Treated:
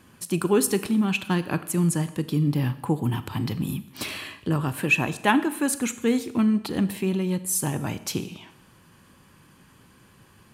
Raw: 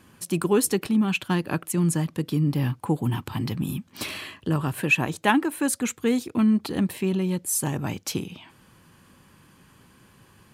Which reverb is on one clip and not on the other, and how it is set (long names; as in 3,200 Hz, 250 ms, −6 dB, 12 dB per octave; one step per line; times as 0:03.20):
four-comb reverb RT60 0.82 s, combs from 27 ms, DRR 13 dB